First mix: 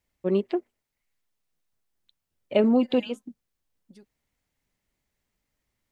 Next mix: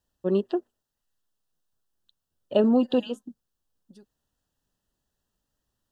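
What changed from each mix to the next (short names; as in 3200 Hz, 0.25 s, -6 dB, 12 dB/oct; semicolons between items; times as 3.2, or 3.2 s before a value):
master: add Butterworth band-stop 2200 Hz, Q 2.4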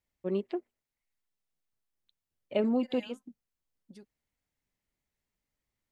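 first voice -7.5 dB; master: remove Butterworth band-stop 2200 Hz, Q 2.4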